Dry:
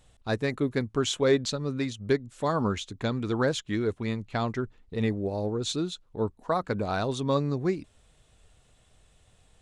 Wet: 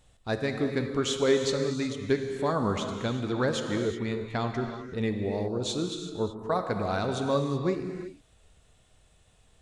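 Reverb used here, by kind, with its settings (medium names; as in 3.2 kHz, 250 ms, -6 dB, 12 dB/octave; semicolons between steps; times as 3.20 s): gated-style reverb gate 400 ms flat, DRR 4.5 dB; trim -1.5 dB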